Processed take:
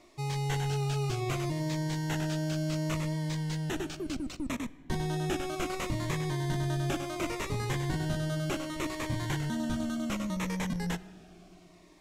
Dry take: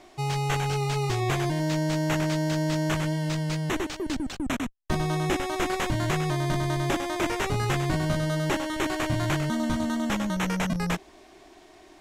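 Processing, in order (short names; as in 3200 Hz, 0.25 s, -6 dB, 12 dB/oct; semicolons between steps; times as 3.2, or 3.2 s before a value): on a send at -17 dB: reverb RT60 1.8 s, pre-delay 20 ms; on the sum: cascading phaser falling 0.68 Hz; gain -5 dB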